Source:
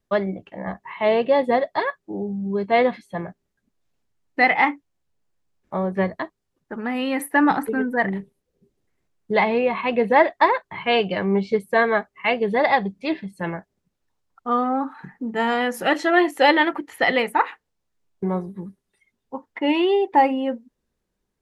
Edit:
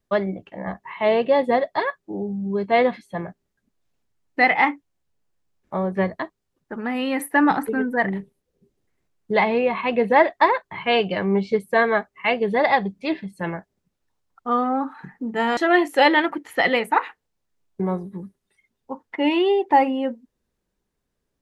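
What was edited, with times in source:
15.57–16 cut

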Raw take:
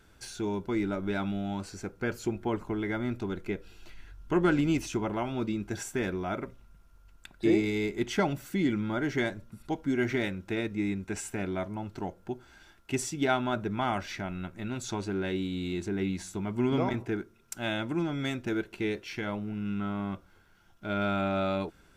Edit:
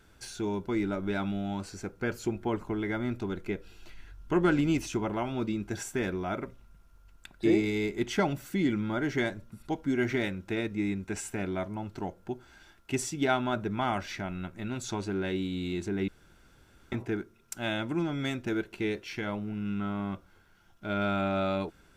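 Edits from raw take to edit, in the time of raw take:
16.08–16.92 room tone

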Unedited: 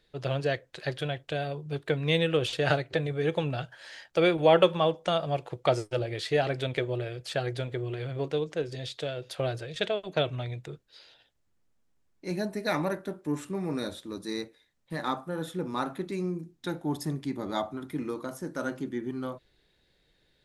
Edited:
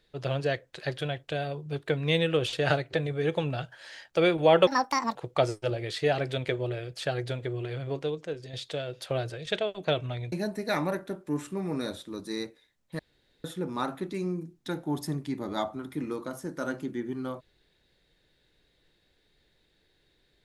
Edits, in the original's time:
4.67–5.44 speed 160%
8.07–8.82 fade out, to -6.5 dB
10.61–12.3 cut
14.97–15.42 room tone

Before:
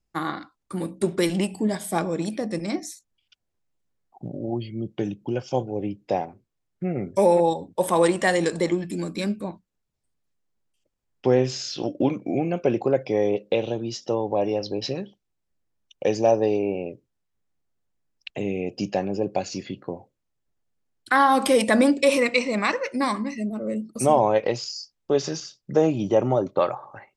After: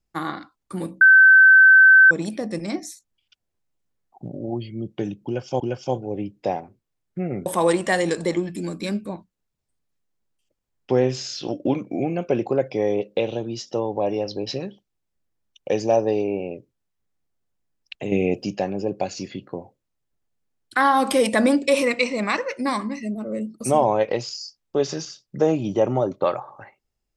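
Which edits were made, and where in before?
1.01–2.11 bleep 1540 Hz -7.5 dBFS
5.25–5.6 loop, 2 plays
7.11–7.81 cut
18.47–18.78 gain +7 dB

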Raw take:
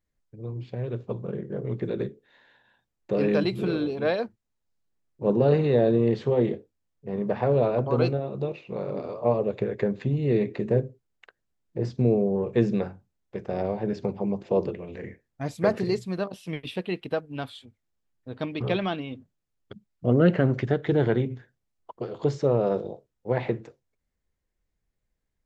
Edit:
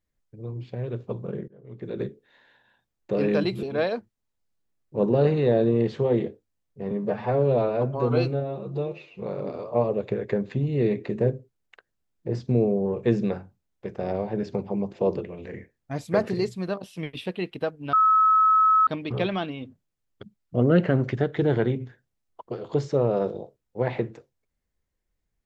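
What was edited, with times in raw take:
1.48–2.03 fade in quadratic, from -22 dB
3.63–3.9 cut
7.18–8.72 stretch 1.5×
17.43–18.37 bleep 1290 Hz -15 dBFS

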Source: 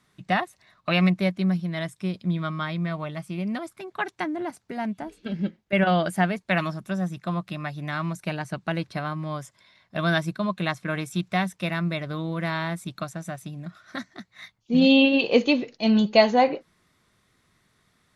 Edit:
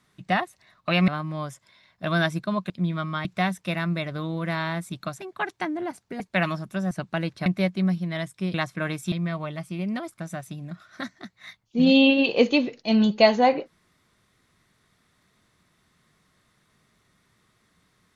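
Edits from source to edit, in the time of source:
1.08–2.16 swap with 9–10.62
2.71–3.79 swap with 11.2–13.15
4.79–6.35 cut
7.06–8.45 cut

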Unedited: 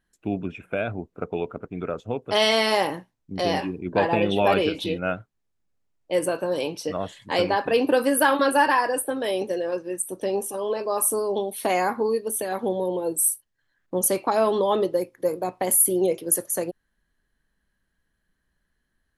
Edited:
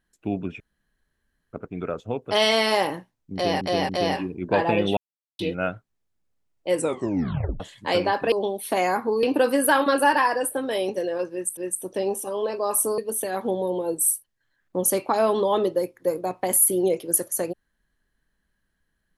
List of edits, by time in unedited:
0.6–1.53 room tone
3.33–3.61 loop, 3 plays
4.41–4.83 mute
6.2 tape stop 0.84 s
9.84–10.1 loop, 2 plays
11.25–12.16 move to 7.76

